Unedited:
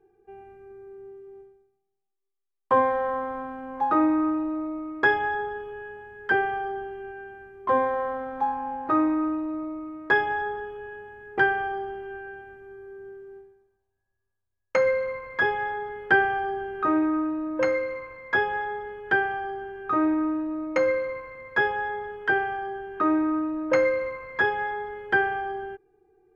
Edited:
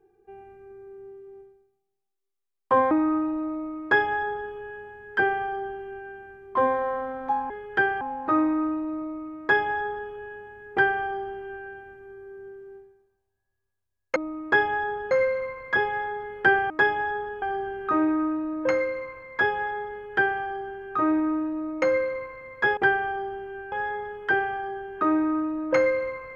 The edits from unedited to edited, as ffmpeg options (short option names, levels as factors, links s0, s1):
-filter_complex "[0:a]asplit=10[s0][s1][s2][s3][s4][s5][s6][s7][s8][s9];[s0]atrim=end=2.912[s10];[s1]atrim=start=4.028:end=8.622[s11];[s2]atrim=start=18.838:end=19.352[s12];[s3]atrim=start=8.618:end=14.772[s13];[s4]atrim=start=4.668:end=5.622[s14];[s5]atrim=start=14.768:end=16.362[s15];[s6]atrim=start=10.008:end=10.732[s16];[s7]atrim=start=16.358:end=21.712[s17];[s8]atrim=start=11.328:end=12.282[s18];[s9]atrim=start=21.708[s19];[s10][s11]acrossfade=d=0.004:c1=hsin:c2=hsin[s20];[s20][s12]acrossfade=d=0.004:c1=hsin:c2=hsin[s21];[s21][s13]acrossfade=d=0.004:c1=hsin:c2=hsin[s22];[s22][s14]acrossfade=d=0.004:c1=hsin:c2=hsin[s23];[s23][s15]acrossfade=d=0.004:c1=hsin:c2=hsin[s24];[s24][s16]acrossfade=d=0.004:c1=hsin:c2=hsin[s25];[s25][s17]acrossfade=d=0.004:c1=hsin:c2=hsin[s26];[s26][s18]acrossfade=d=0.004:c1=hsin:c2=hsin[s27];[s27][s19]acrossfade=d=0.004:c1=hsin:c2=hsin"